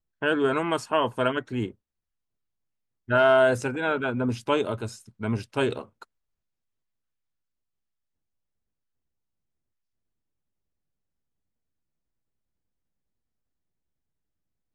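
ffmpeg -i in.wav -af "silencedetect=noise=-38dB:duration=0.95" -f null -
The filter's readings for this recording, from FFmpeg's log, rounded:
silence_start: 1.71
silence_end: 3.09 | silence_duration: 1.38
silence_start: 6.03
silence_end: 14.74 | silence_duration: 8.71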